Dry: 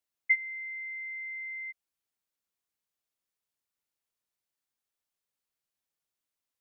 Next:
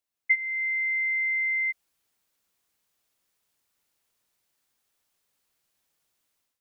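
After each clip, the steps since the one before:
automatic gain control gain up to 12.5 dB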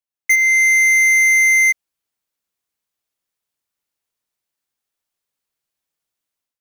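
leveller curve on the samples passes 5
level +3.5 dB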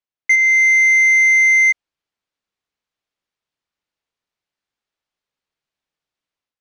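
low-pass filter 4,500 Hz 12 dB per octave
level +1 dB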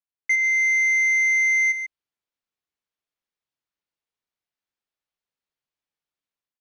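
single-tap delay 141 ms −9.5 dB
level −7.5 dB

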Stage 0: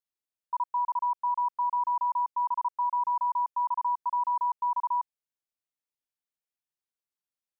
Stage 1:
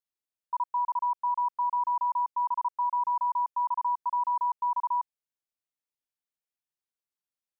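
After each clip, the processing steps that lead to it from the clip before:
no processing that can be heard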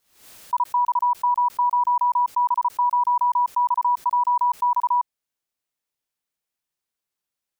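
background raised ahead of every attack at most 100 dB per second
level +7.5 dB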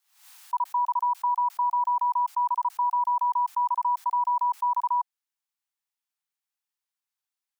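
Butterworth high-pass 740 Hz 96 dB per octave
level −4.5 dB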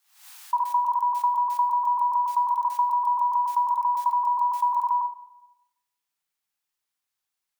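rectangular room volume 450 cubic metres, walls mixed, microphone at 0.47 metres
level +4.5 dB

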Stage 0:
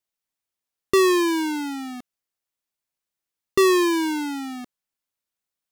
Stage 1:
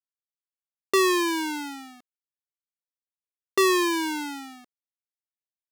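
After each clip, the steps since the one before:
downward expander −28 dBFS
low-shelf EQ 310 Hz −11.5 dB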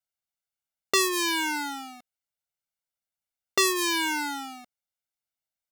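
comb filter 1.4 ms, depth 65%
level +2 dB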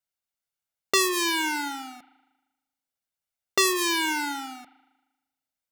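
spring reverb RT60 1.1 s, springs 38 ms, chirp 75 ms, DRR 15 dB
level +1 dB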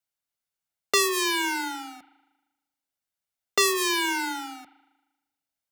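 frequency shifter +15 Hz

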